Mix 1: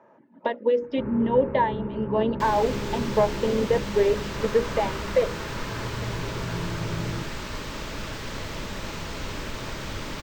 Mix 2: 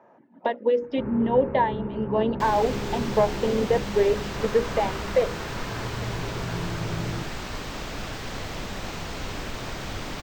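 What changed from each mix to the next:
master: remove Butterworth band-stop 740 Hz, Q 7.3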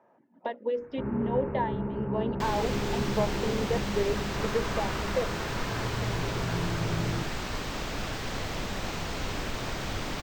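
speech -8.0 dB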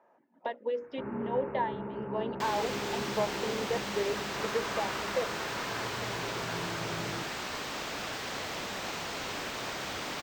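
master: add HPF 450 Hz 6 dB/oct

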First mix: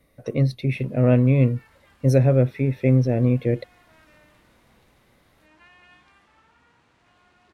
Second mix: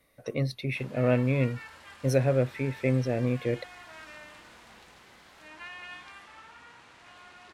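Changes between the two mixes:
background +11.0 dB; master: add low shelf 480 Hz -10.5 dB

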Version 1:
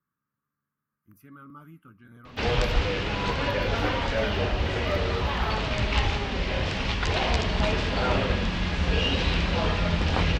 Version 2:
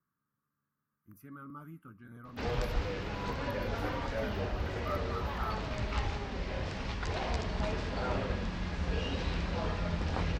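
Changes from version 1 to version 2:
background -8.5 dB; master: add bell 3000 Hz -7 dB 1 oct

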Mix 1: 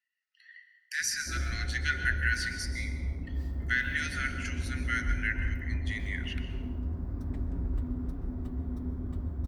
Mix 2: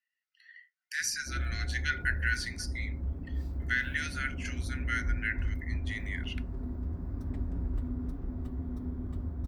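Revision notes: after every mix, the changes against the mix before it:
reverb: off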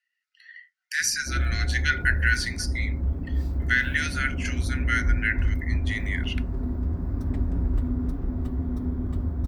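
speech +7.5 dB; background +8.5 dB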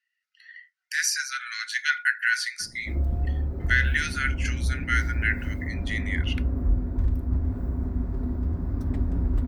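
background: entry +1.60 s

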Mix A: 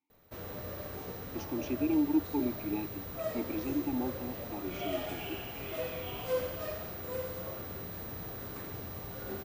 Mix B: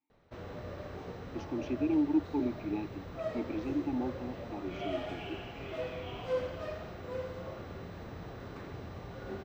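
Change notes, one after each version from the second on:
master: add air absorption 150 m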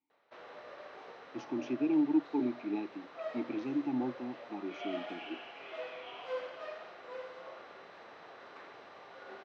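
background: add BPF 660–4300 Hz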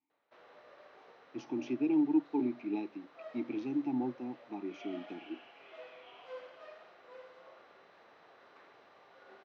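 background -8.0 dB

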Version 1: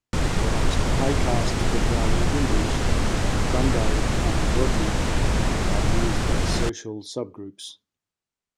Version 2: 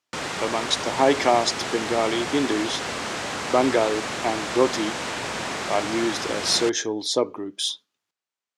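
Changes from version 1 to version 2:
speech +11.5 dB; master: add weighting filter A

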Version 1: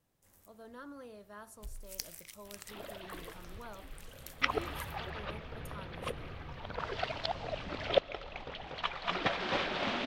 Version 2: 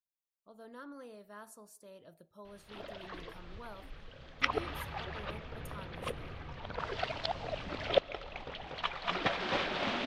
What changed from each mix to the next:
first sound: muted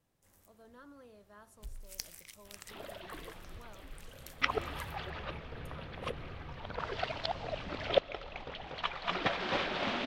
speech -6.5 dB; first sound: unmuted; master: add high shelf 11000 Hz -5 dB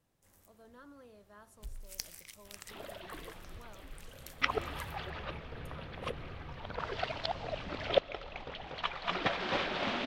first sound: send +6.0 dB

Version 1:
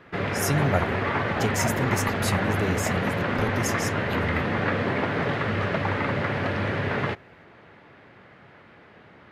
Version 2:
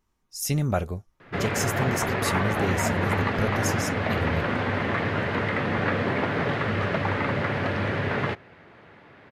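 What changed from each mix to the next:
background: entry +1.20 s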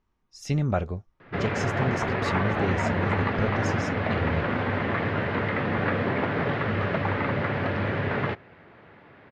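master: add air absorption 160 m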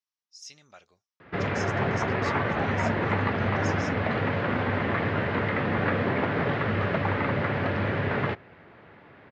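speech: add band-pass 5600 Hz, Q 2.2

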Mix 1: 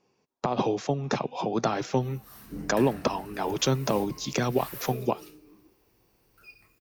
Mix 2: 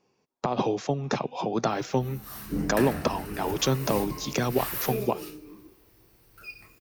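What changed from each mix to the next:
background +8.5 dB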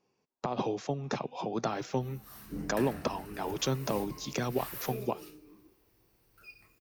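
speech -6.0 dB; background -9.5 dB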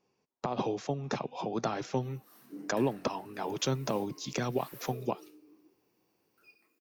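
background: add ladder high-pass 240 Hz, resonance 45%

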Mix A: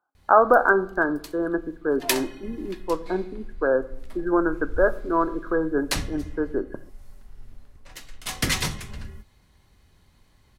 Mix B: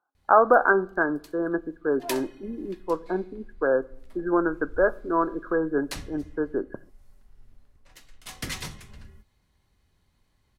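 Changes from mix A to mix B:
speech: send -7.0 dB; background -9.5 dB

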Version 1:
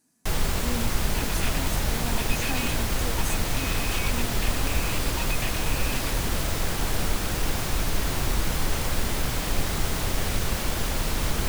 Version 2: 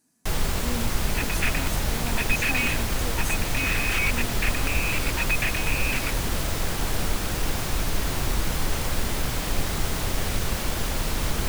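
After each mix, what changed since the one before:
second sound: add band shelf 1800 Hz +10 dB 1.3 oct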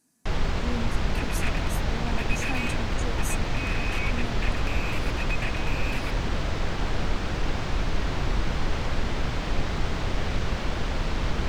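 first sound: add air absorption 160 m; second sound -7.5 dB

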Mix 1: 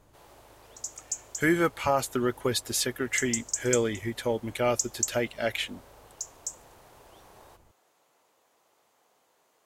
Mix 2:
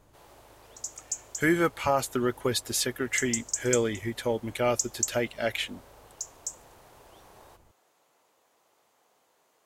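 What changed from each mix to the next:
none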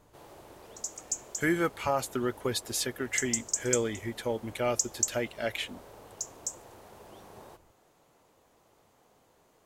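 speech -3.5 dB; background: remove HPF 730 Hz 6 dB/oct

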